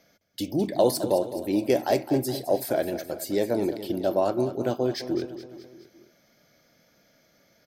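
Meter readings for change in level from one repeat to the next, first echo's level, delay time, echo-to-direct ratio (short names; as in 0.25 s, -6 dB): -5.0 dB, -12.5 dB, 0.211 s, -11.0 dB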